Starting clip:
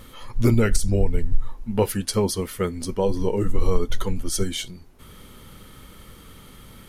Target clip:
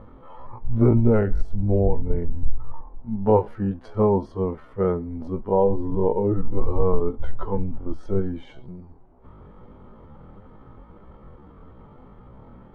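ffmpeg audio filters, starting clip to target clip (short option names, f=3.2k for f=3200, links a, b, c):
-af "lowpass=f=870:t=q:w=1.9,atempo=0.54"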